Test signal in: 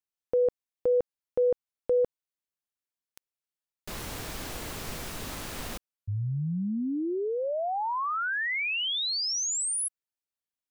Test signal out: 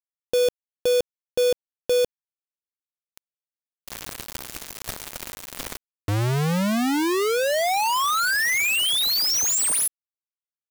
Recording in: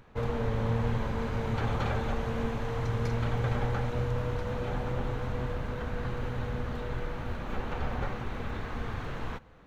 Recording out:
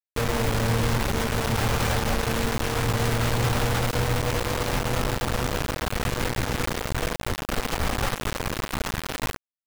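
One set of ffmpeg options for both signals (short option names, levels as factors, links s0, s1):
-af "acrusher=bits=4:mix=0:aa=0.000001,aeval=exprs='0.133*sin(PI/2*7.08*val(0)/0.133)':c=same,volume=1.33"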